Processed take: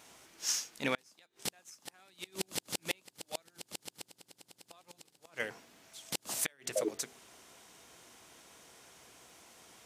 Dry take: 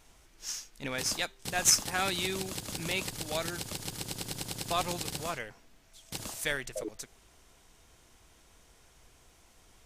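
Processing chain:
high-pass filter 180 Hz 12 dB per octave
mains-hum notches 50/100/150/200/250/300/350/400/450 Hz
gate with flip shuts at −21 dBFS, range −36 dB
level +5 dB

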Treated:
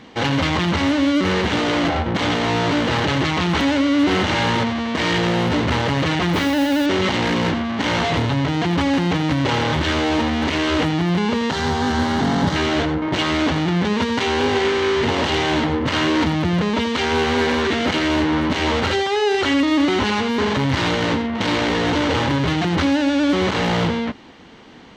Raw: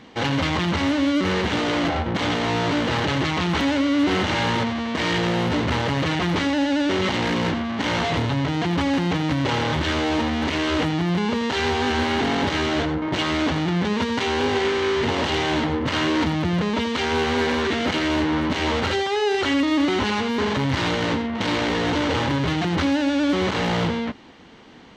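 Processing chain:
0:06.33–0:06.86: noise that follows the level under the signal 25 dB
0:11.51–0:12.56: graphic EQ with 15 bands 160 Hz +10 dB, 400 Hz −5 dB, 2,500 Hz −10 dB
level +3 dB

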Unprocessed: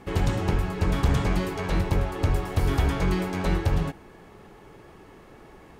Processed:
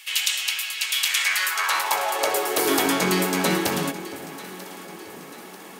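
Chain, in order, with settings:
RIAA equalisation recording
high-pass filter sweep 2,800 Hz → 220 Hz, 0:01.00–0:03.01
delay that swaps between a low-pass and a high-pass 470 ms, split 800 Hz, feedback 69%, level −13 dB
level +6.5 dB

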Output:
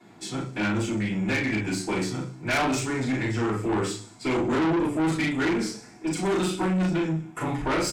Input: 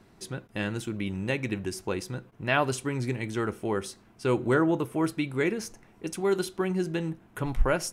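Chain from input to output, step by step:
delay with a high-pass on its return 62 ms, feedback 60%, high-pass 5,000 Hz, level −12 dB
formants moved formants −2 semitones
double-tracking delay 38 ms −3 dB
convolution reverb RT60 0.40 s, pre-delay 3 ms, DRR −12 dB
tube saturation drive 17 dB, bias 0.25
level −4 dB

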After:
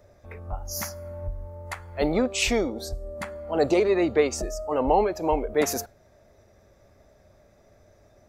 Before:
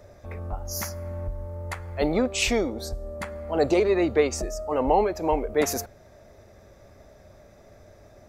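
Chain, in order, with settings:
noise reduction from a noise print of the clip's start 6 dB

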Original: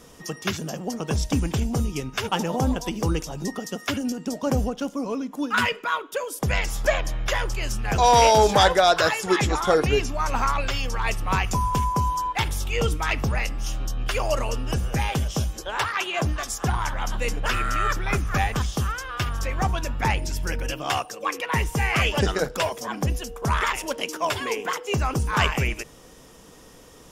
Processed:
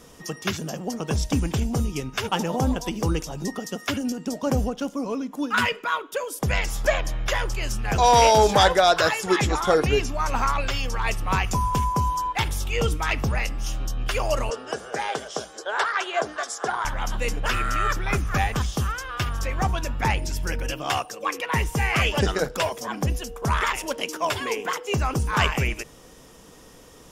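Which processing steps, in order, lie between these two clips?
0:14.50–0:16.85: loudspeaker in its box 410–8,800 Hz, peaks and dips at 430 Hz +7 dB, 670 Hz +5 dB, 1,500 Hz +6 dB, 2,600 Hz −7 dB, 6,200 Hz −3 dB

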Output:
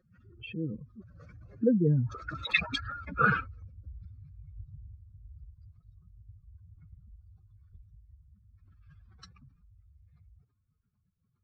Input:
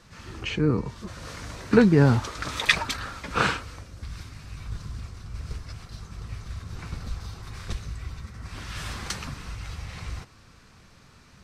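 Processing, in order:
expanding power law on the bin magnitudes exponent 2.7
source passing by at 0:03.30, 21 m/s, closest 18 metres
notch comb filter 990 Hz

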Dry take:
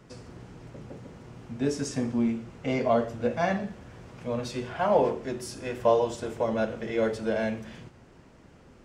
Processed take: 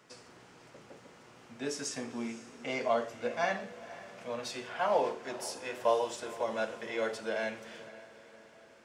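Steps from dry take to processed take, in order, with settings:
high-pass filter 1,000 Hz 6 dB per octave
on a send: feedback delay with all-pass diffusion 507 ms, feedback 48%, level −16 dB

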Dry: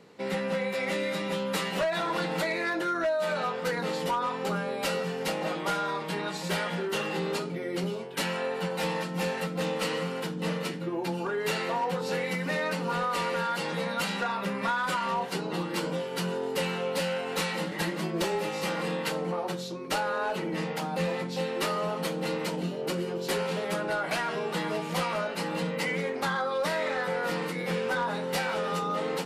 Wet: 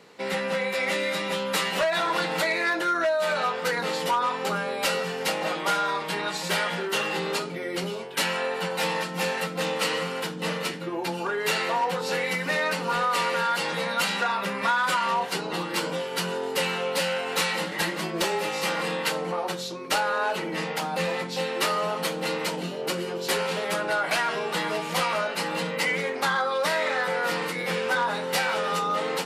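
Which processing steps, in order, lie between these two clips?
low-shelf EQ 450 Hz −10 dB
level +6.5 dB

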